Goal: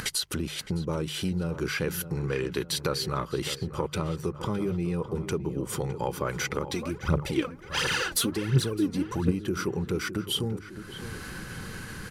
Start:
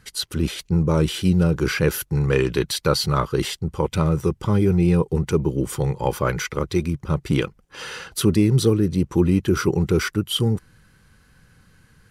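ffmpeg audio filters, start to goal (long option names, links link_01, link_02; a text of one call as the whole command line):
ffmpeg -i in.wav -filter_complex "[0:a]acompressor=mode=upward:threshold=-20dB:ratio=2.5,bandreject=frequency=50:width_type=h:width=6,bandreject=frequency=100:width_type=h:width=6,bandreject=frequency=150:width_type=h:width=6,acompressor=threshold=-26dB:ratio=4,lowshelf=frequency=120:gain=-6.5,asplit=2[link_01][link_02];[link_02]adelay=611,lowpass=frequency=2200:poles=1,volume=-11.5dB,asplit=2[link_03][link_04];[link_04]adelay=611,lowpass=frequency=2200:poles=1,volume=0.53,asplit=2[link_05][link_06];[link_06]adelay=611,lowpass=frequency=2200:poles=1,volume=0.53,asplit=2[link_07][link_08];[link_08]adelay=611,lowpass=frequency=2200:poles=1,volume=0.53,asplit=2[link_09][link_10];[link_10]adelay=611,lowpass=frequency=2200:poles=1,volume=0.53,asplit=2[link_11][link_12];[link_12]adelay=611,lowpass=frequency=2200:poles=1,volume=0.53[link_13];[link_01][link_03][link_05][link_07][link_09][link_11][link_13]amix=inputs=7:normalize=0,asplit=3[link_14][link_15][link_16];[link_14]afade=type=out:start_time=6.69:duration=0.02[link_17];[link_15]aphaser=in_gain=1:out_gain=1:delay=4.5:decay=0.68:speed=1.4:type=triangular,afade=type=in:start_time=6.69:duration=0.02,afade=type=out:start_time=9.3:duration=0.02[link_18];[link_16]afade=type=in:start_time=9.3:duration=0.02[link_19];[link_17][link_18][link_19]amix=inputs=3:normalize=0" out.wav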